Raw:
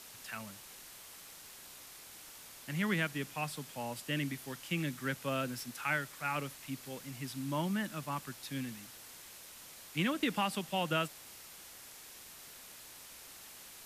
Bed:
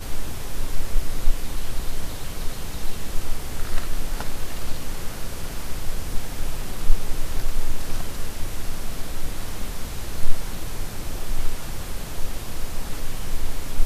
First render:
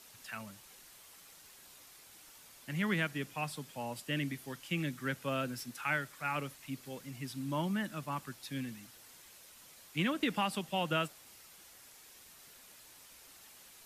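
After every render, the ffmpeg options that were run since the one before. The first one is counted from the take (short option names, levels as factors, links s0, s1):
-af "afftdn=nr=6:nf=-53"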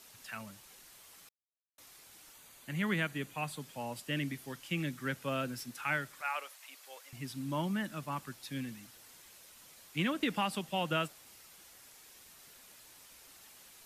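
-filter_complex "[0:a]asettb=1/sr,asplit=3[s0][s1][s2];[s0]atrim=end=2.334[s3];[s1]atrim=start=2.33:end=3.6,asetpts=PTS-STARTPTS,afade=t=in:d=0.004:c=qsin,afade=t=out:st=1.266:d=0.004:c=qsin,bandreject=f=5300:w=5.9[s4];[s2]atrim=start=3.596[s5];[s3][s4]acrossfade=d=0.004:c1=hsin:c2=qsin[s6];[s6][s5]acrossfade=d=0.004:c1=qsin:c2=hsin,asettb=1/sr,asplit=3[s7][s8][s9];[s7]atrim=end=6.214[s10];[s8]atrim=start=6.21:end=7.13,asetpts=PTS-STARTPTS,afade=t=in:d=0.004:c=qsin,afade=t=out:st=0.916:d=0.004:c=qsin,highpass=f=590:w=0.5412,highpass=f=590:w=1.3066[s11];[s9]atrim=start=7.126[s12];[s10][s11]acrossfade=d=0.004:c1=hsin:c2=qsin[s13];[s13][s12]acrossfade=d=0.004:c1=qsin:c2=hsin,asplit=3[s14][s15][s16];[s14]atrim=end=1.29,asetpts=PTS-STARTPTS,afade=t=out:st=1.286:d=0.004:c=hsin[s17];[s15]atrim=start=1.29:end=1.78,asetpts=PTS-STARTPTS,volume=0[s18];[s16]atrim=start=1.78,asetpts=PTS-STARTPTS,afade=t=in:d=0.004:c=hsin[s19];[s17][s18][s19]concat=n=3:v=0:a=1"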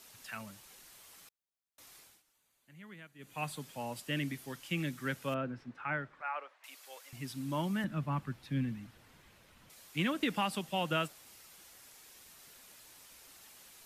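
-filter_complex "[0:a]asettb=1/sr,asplit=3[s0][s1][s2];[s0]atrim=end=5.344[s3];[s1]atrim=start=5.34:end=6.64,asetpts=PTS-STARTPTS,afade=t=in:d=0.004:c=qsin,afade=t=out:st=1.296:d=0.004:c=qsin,lowpass=1600[s4];[s2]atrim=start=6.636[s5];[s3][s4]acrossfade=d=0.004:c1=hsin:c2=qsin[s6];[s6][s5]acrossfade=d=0.004:c1=qsin:c2=hsin,asettb=1/sr,asplit=3[s7][s8][s9];[s7]atrim=end=7.844[s10];[s8]atrim=start=7.84:end=9.7,asetpts=PTS-STARTPTS,afade=t=in:d=0.004:c=qsin,afade=t=out:st=1.856:d=0.004:c=qsin,bass=f=250:g=10,treble=f=4000:g=-14[s11];[s9]atrim=start=9.696[s12];[s10][s11]acrossfade=d=0.004:c1=hsin:c2=qsin[s13];[s13][s12]acrossfade=d=0.004:c1=qsin:c2=hsin,asplit=3[s14][s15][s16];[s14]atrim=end=2.23,asetpts=PTS-STARTPTS,afade=t=out:st=1.98:d=0.25:silence=0.112202[s17];[s15]atrim=start=2.23:end=3.18,asetpts=PTS-STARTPTS,volume=0.112[s18];[s16]atrim=start=3.18,asetpts=PTS-STARTPTS,afade=t=in:d=0.25:silence=0.112202[s19];[s17][s18][s19]concat=n=3:v=0:a=1"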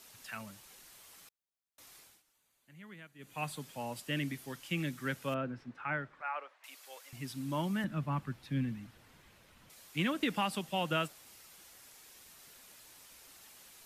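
-af anull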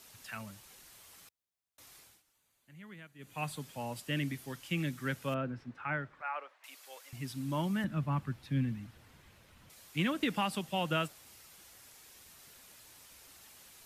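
-af "equalizer=f=84:w=1:g=6"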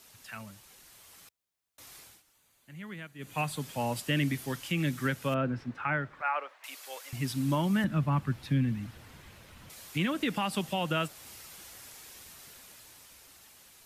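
-af "dynaudnorm=f=260:g=13:m=2.51,alimiter=limit=0.106:level=0:latency=1:release=273"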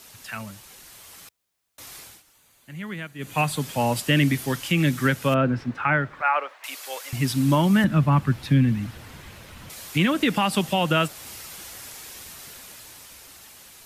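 -af "volume=2.82"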